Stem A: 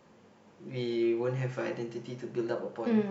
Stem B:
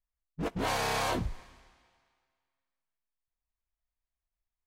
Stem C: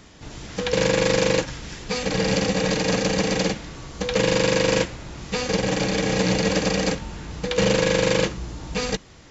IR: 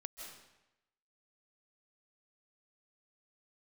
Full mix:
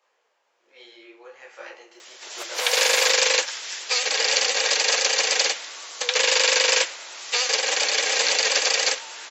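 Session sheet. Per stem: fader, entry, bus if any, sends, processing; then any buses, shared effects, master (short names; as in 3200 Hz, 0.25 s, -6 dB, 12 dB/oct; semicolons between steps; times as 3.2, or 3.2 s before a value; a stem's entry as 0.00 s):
+2.5 dB, 0.00 s, no send, high shelf 2700 Hz -7.5 dB; vocal rider within 4 dB 0.5 s; detuned doubles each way 45 cents
+1.0 dB, 1.95 s, no send, high shelf 7800 Hz +5 dB; whisperiser
+2.5 dB, 2.00 s, no send, vibrato 10 Hz 54 cents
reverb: off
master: HPF 500 Hz 24 dB/oct; tilt shelf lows -7 dB, about 1400 Hz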